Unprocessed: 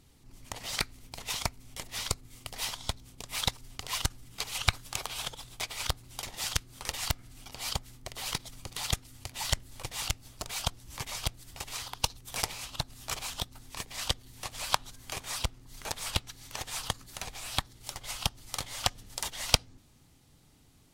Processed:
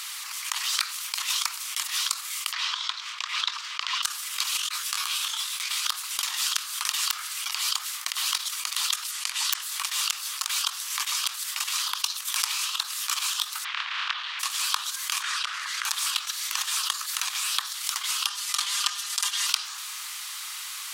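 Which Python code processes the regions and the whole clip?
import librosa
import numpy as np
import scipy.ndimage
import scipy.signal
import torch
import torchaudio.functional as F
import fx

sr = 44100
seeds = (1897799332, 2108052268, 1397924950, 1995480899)

y = fx.chain(x, sr, fx.air_absorb(metres=170.0),
    fx.notch(hz=790.0, q=5.0), at=(2.52, 4.03))
y = fx.chain(y, sr, fx.over_compress(threshold_db=-39.0, ratio=-0.5),
    fx.highpass(hz=850.0, slope=6),
    fx.detune_double(cents=25), at=(4.57, 5.85))
y = fx.chain(y, sr, fx.lowpass(hz=11000.0, slope=12),
    fx.overflow_wrap(gain_db=16.0), at=(9.11, 9.62))
y = fx.spec_clip(y, sr, under_db=27, at=(13.63, 14.39), fade=0.02)
y = fx.lowpass(y, sr, hz=3300.0, slope=24, at=(13.63, 14.39), fade=0.02)
y = fx.chain(y, sr, fx.cheby_ripple_highpass(hz=420.0, ripple_db=9),
    fx.air_absorb(metres=60.0),
    fx.env_flatten(amount_pct=50), at=(15.22, 15.85))
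y = fx.chain(y, sr, fx.lowpass(hz=12000.0, slope=12),
    fx.comb(ms=5.0, depth=0.96), at=(18.26, 19.47))
y = scipy.signal.sosfilt(scipy.signal.ellip(4, 1.0, 70, 1100.0, 'highpass', fs=sr, output='sos'), y)
y = fx.dynamic_eq(y, sr, hz=2100.0, q=4.0, threshold_db=-56.0, ratio=4.0, max_db=-7)
y = fx.env_flatten(y, sr, amount_pct=70)
y = y * librosa.db_to_amplitude(-1.0)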